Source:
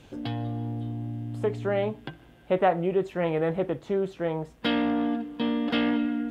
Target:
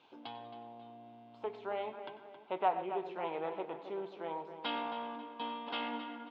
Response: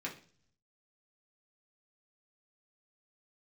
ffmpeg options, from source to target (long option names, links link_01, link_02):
-filter_complex "[0:a]highpass=480,equalizer=frequency=540:width_type=q:width=4:gain=-7,equalizer=frequency=930:width_type=q:width=4:gain=9,equalizer=frequency=1800:width_type=q:width=4:gain=-10,lowpass=frequency=4300:width=0.5412,lowpass=frequency=4300:width=1.3066,asplit=2[link_01][link_02];[link_02]adelay=270,lowpass=frequency=3000:poles=1,volume=-9.5dB,asplit=2[link_03][link_04];[link_04]adelay=270,lowpass=frequency=3000:poles=1,volume=0.46,asplit=2[link_05][link_06];[link_06]adelay=270,lowpass=frequency=3000:poles=1,volume=0.46,asplit=2[link_07][link_08];[link_08]adelay=270,lowpass=frequency=3000:poles=1,volume=0.46,asplit=2[link_09][link_10];[link_10]adelay=270,lowpass=frequency=3000:poles=1,volume=0.46[link_11];[link_01][link_03][link_05][link_07][link_09][link_11]amix=inputs=6:normalize=0,asplit=2[link_12][link_13];[1:a]atrim=start_sample=2205,adelay=94[link_14];[link_13][link_14]afir=irnorm=-1:irlink=0,volume=-12.5dB[link_15];[link_12][link_15]amix=inputs=2:normalize=0,volume=-7.5dB"